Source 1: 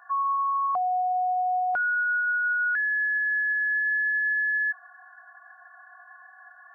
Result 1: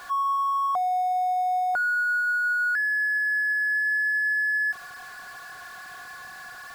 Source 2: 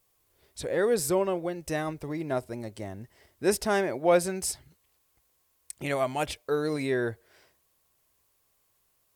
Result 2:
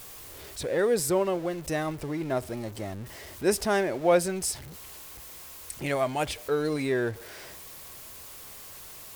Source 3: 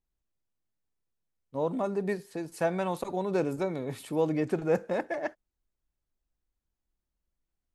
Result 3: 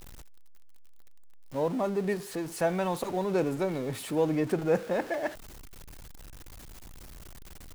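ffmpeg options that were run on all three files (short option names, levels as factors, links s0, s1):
-af "aeval=exprs='val(0)+0.5*0.0112*sgn(val(0))':c=same"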